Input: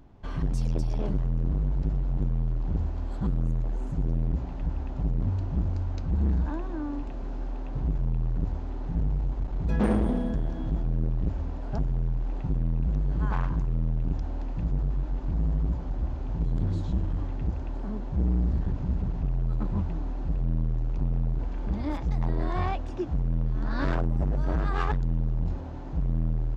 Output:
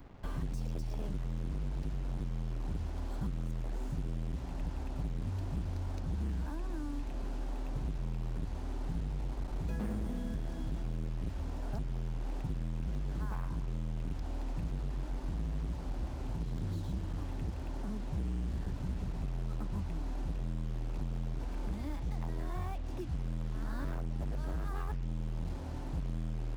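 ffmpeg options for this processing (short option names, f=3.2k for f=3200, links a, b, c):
-filter_complex "[0:a]asettb=1/sr,asplit=3[a][b][c];[a]atrim=end=16.074[d];[b]atrim=start=16.07:end=18.15,asetpts=PTS-STARTPTS,afade=t=in:d=0.004:c=qsin,afade=t=out:st=2.076:d=0.004:c=qsin,highpass=f=48:p=1[e];[c]atrim=start=18.146[f];[d][e]acrossfade=d=0.004:c1=hsin:c2=qsin[g];[g][f]acrossfade=d=0.004:c1=qsin:c2=hsin,acrossover=split=200|1400[h][i][j];[h]acompressor=threshold=-35dB:ratio=4[k];[i]acompressor=threshold=-46dB:ratio=4[l];[j]acompressor=threshold=-58dB:ratio=4[m];[k][l][m]amix=inputs=3:normalize=0,acrusher=bits=8:mix=0:aa=0.5"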